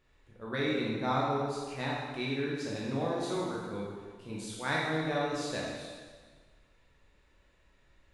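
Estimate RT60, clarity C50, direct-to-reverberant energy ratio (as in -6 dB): 1.5 s, -1.0 dB, -5.0 dB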